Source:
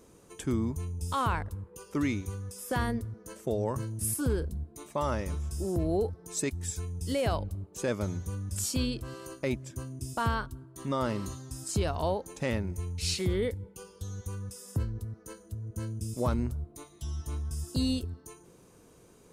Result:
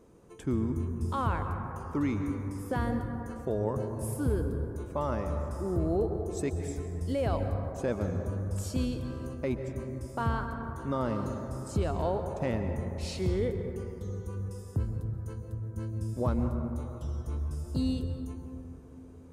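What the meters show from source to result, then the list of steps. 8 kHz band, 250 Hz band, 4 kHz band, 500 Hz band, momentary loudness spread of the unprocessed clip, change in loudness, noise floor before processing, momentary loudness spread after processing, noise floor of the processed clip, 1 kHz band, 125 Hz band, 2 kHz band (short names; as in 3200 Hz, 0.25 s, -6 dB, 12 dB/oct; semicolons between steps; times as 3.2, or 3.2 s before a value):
-11.0 dB, +1.0 dB, -8.5 dB, +1.0 dB, 11 LU, 0.0 dB, -57 dBFS, 8 LU, -47 dBFS, -1.0 dB, +1.5 dB, -3.5 dB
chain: high shelf 2200 Hz -12 dB; plate-style reverb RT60 3.4 s, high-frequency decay 0.25×, pre-delay 0.115 s, DRR 5.5 dB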